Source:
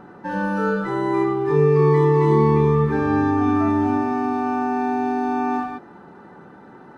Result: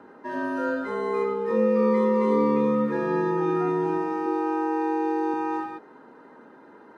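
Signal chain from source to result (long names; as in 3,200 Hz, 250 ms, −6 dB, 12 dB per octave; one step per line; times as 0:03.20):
frequency shifter +69 Hz
0:04.26–0:05.34: low shelf with overshoot 280 Hz −7 dB, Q 3
level −5.5 dB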